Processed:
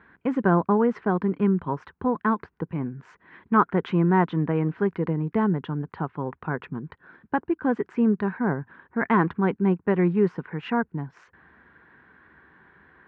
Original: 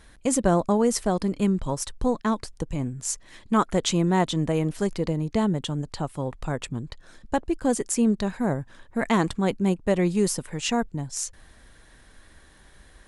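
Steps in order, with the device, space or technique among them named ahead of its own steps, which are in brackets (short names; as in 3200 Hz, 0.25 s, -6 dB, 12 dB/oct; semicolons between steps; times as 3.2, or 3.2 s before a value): bass cabinet (speaker cabinet 89–2200 Hz, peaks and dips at 110 Hz -10 dB, 170 Hz +3 dB, 400 Hz +4 dB, 590 Hz -9 dB, 1000 Hz +5 dB, 1500 Hz +7 dB)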